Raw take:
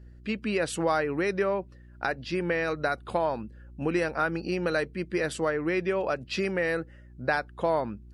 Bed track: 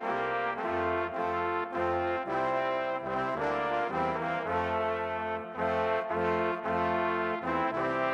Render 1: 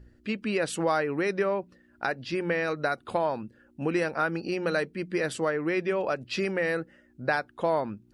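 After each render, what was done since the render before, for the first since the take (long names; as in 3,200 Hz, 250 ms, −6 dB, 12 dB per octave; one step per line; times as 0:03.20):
hum removal 60 Hz, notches 3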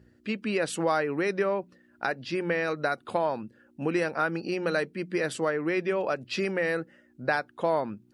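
high-pass filter 110 Hz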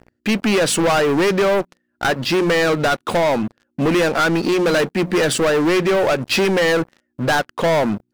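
leveller curve on the samples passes 5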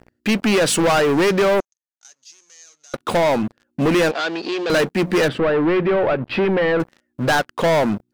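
0:01.60–0:02.94: resonant band-pass 6,400 Hz, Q 17
0:04.11–0:04.70: loudspeaker in its box 480–5,800 Hz, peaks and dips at 550 Hz −5 dB, 900 Hz −6 dB, 1,300 Hz −9 dB, 2,100 Hz −7 dB, 5,700 Hz −6 dB
0:05.28–0:06.80: high-frequency loss of the air 420 metres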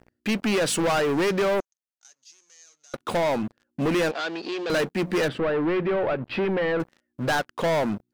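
level −6.5 dB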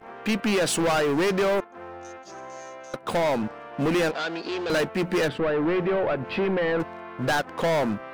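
mix in bed track −10.5 dB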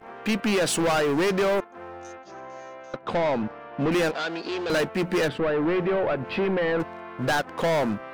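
0:02.15–0:03.92: high-frequency loss of the air 140 metres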